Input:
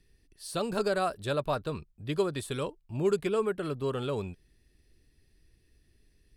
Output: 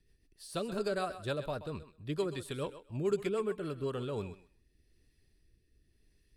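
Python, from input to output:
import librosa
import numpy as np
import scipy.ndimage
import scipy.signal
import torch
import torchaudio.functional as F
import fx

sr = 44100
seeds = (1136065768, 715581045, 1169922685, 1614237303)

y = fx.rotary_switch(x, sr, hz=6.7, then_hz=0.9, switch_at_s=3.49)
y = fx.echo_thinned(y, sr, ms=129, feedback_pct=18, hz=380.0, wet_db=-12)
y = F.gain(torch.from_numpy(y), -3.0).numpy()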